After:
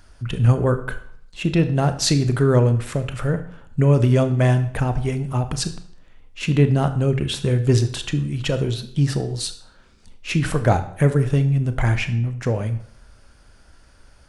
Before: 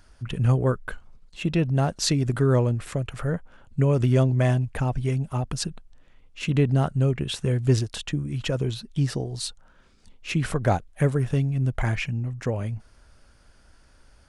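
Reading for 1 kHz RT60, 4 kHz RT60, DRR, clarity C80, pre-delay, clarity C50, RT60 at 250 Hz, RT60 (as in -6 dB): 0.60 s, 0.55 s, 9.0 dB, 16.0 dB, 22 ms, 13.0 dB, 0.65 s, 0.60 s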